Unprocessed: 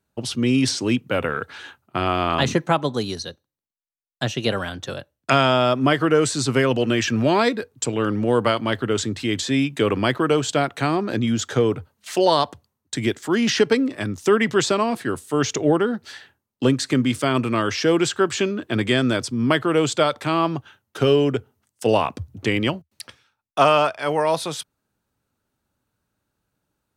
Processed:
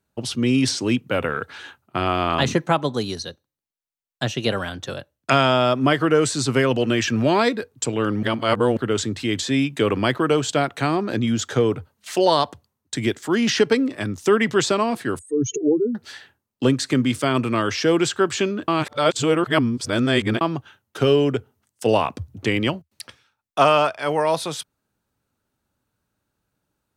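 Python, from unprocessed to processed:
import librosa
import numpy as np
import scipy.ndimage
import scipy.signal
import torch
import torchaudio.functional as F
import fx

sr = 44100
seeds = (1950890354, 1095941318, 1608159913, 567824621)

y = fx.spec_expand(x, sr, power=3.9, at=(15.19, 15.95))
y = fx.edit(y, sr, fx.reverse_span(start_s=8.23, length_s=0.54),
    fx.reverse_span(start_s=18.68, length_s=1.73), tone=tone)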